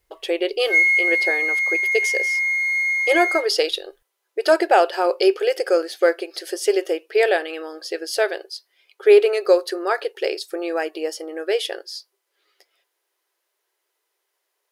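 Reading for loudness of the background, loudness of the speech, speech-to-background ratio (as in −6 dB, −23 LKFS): −18.0 LKFS, −21.5 LKFS, −3.5 dB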